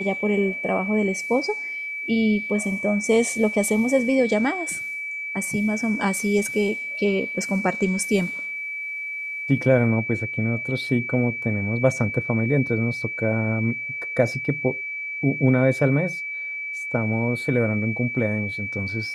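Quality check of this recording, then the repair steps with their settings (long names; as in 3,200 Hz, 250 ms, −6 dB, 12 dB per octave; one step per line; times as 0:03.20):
whistle 2,300 Hz −28 dBFS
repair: notch filter 2,300 Hz, Q 30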